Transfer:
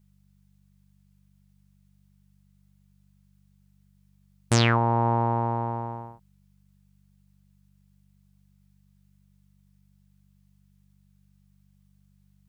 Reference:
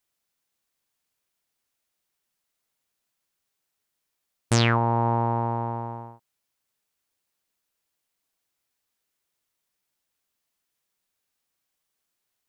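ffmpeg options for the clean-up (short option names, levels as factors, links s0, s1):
-af "bandreject=f=48.6:t=h:w=4,bandreject=f=97.2:t=h:w=4,bandreject=f=145.8:t=h:w=4,bandreject=f=194.4:t=h:w=4"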